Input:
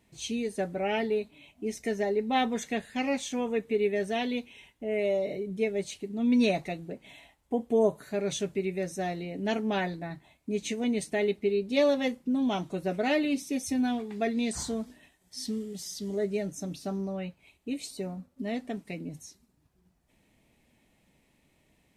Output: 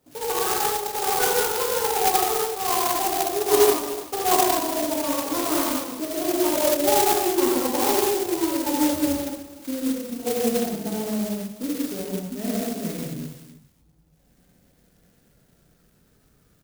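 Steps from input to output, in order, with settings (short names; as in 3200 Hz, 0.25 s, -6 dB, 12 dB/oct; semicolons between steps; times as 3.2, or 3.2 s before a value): speed glide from 199% -> 65%; downsampling 11025 Hz; on a send: echo 0.298 s -14.5 dB; on the sum: non-linear reverb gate 0.28 s flat, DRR -7.5 dB; clock jitter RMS 0.13 ms; gain -1 dB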